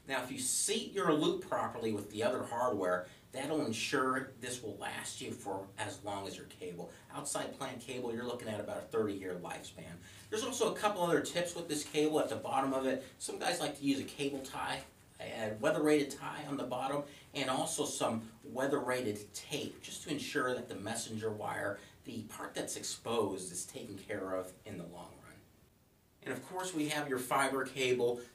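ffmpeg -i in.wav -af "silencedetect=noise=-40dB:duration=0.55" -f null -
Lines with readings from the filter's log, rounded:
silence_start: 25.01
silence_end: 26.26 | silence_duration: 1.25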